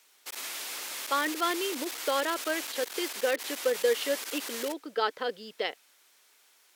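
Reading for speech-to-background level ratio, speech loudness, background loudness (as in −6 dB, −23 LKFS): 4.5 dB, −31.5 LKFS, −36.0 LKFS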